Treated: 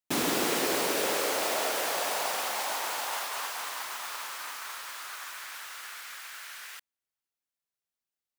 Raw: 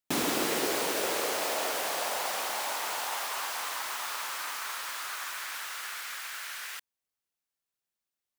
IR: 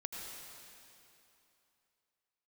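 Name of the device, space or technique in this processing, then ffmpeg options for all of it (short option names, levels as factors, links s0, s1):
keyed gated reverb: -filter_complex "[0:a]asplit=3[s0][s1][s2];[1:a]atrim=start_sample=2205[s3];[s1][s3]afir=irnorm=-1:irlink=0[s4];[s2]apad=whole_len=369633[s5];[s4][s5]sidechaingate=range=0.002:threshold=0.0224:ratio=16:detection=peak,volume=1.12[s6];[s0][s6]amix=inputs=2:normalize=0,volume=0.631"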